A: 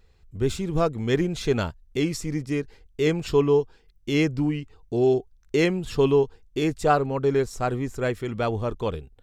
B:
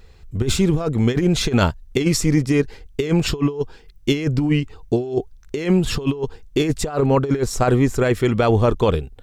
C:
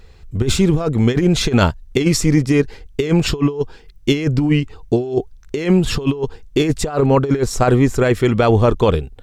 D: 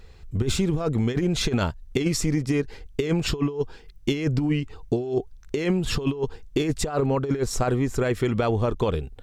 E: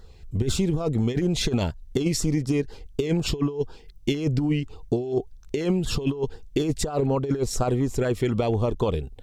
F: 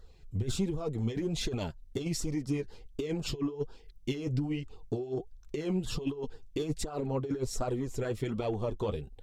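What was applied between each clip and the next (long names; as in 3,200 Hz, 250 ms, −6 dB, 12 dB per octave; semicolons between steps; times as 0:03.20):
compressor whose output falls as the input rises −25 dBFS, ratio −0.5; level +8.5 dB
high-shelf EQ 11,000 Hz −4 dB; level +3 dB
downward compressor, threshold −16 dBFS, peak gain reduction 7.5 dB; level −3.5 dB
auto-filter notch saw down 4.1 Hz 980–2,600 Hz
flanger 1.3 Hz, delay 1.5 ms, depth 9.5 ms, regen +32%; in parallel at −8 dB: soft clipping −22.5 dBFS, distortion −14 dB; on the sum: level −7.5 dB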